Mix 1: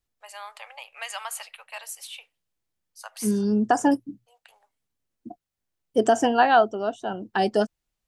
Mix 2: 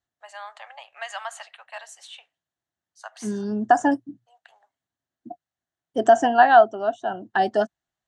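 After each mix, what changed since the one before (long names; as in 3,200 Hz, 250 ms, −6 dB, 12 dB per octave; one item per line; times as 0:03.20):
master: add loudspeaker in its box 100–7,100 Hz, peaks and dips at 200 Hz −5 dB, 470 Hz −8 dB, 690 Hz +7 dB, 1,700 Hz +6 dB, 2,400 Hz −8 dB, 5,000 Hz −8 dB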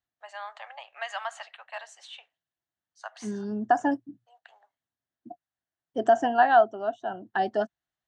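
second voice −5.0 dB
master: add high-frequency loss of the air 83 metres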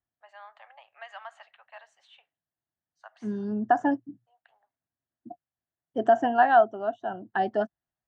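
first voice −8.5 dB
master: add bass and treble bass +3 dB, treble −12 dB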